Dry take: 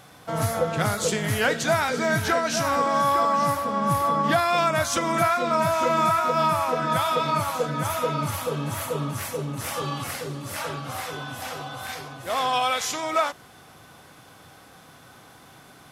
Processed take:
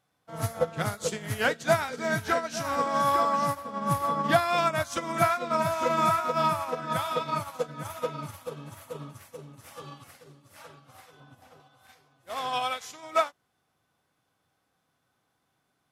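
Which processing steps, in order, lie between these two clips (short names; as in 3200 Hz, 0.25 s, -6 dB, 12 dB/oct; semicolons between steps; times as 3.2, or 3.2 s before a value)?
11.2–11.6 tilt shelf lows +5 dB; upward expander 2.5:1, over -36 dBFS; gain +1.5 dB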